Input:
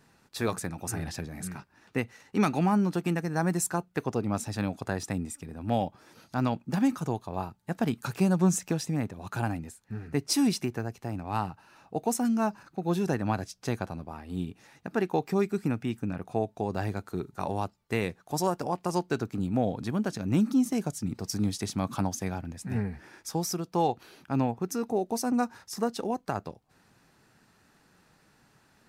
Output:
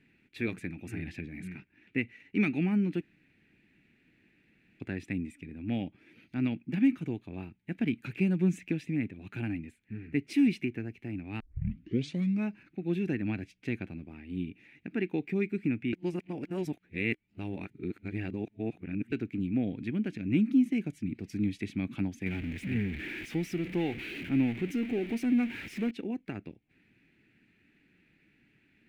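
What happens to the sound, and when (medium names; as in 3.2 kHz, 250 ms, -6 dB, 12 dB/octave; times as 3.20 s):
3.01–4.80 s: room tone
11.40 s: tape start 1.07 s
15.93–19.12 s: reverse
22.26–25.91 s: jump at every zero crossing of -31.5 dBFS
whole clip: FFT filter 150 Hz 0 dB, 310 Hz +7 dB, 520 Hz -8 dB, 1.1 kHz -17 dB, 2.3 kHz +12 dB, 5.3 kHz -16 dB; trim -5 dB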